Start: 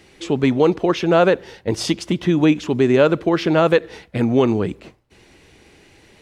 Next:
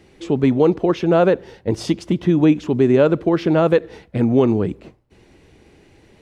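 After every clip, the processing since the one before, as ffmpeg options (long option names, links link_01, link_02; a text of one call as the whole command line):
ffmpeg -i in.wav -af "tiltshelf=frequency=970:gain=4.5,volume=-2.5dB" out.wav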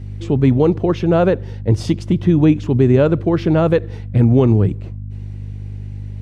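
ffmpeg -i in.wav -af "aeval=exprs='val(0)+0.02*(sin(2*PI*50*n/s)+sin(2*PI*2*50*n/s)/2+sin(2*PI*3*50*n/s)/3+sin(2*PI*4*50*n/s)/4+sin(2*PI*5*50*n/s)/5)':channel_layout=same,equalizer=frequency=100:width_type=o:width=1.2:gain=14,volume=-1dB" out.wav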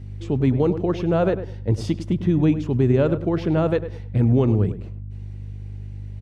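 ffmpeg -i in.wav -filter_complex "[0:a]asplit=2[link_01][link_02];[link_02]adelay=102,lowpass=frequency=1800:poles=1,volume=-11dB,asplit=2[link_03][link_04];[link_04]adelay=102,lowpass=frequency=1800:poles=1,volume=0.22,asplit=2[link_05][link_06];[link_06]adelay=102,lowpass=frequency=1800:poles=1,volume=0.22[link_07];[link_01][link_03][link_05][link_07]amix=inputs=4:normalize=0,volume=-6dB" out.wav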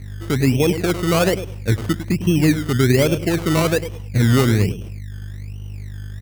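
ffmpeg -i in.wav -af "acrusher=samples=21:mix=1:aa=0.000001:lfo=1:lforange=12.6:lforate=1.2,volume=2.5dB" out.wav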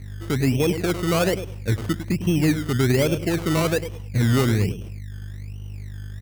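ffmpeg -i in.wav -af "asoftclip=type=tanh:threshold=-6.5dB,volume=-3dB" out.wav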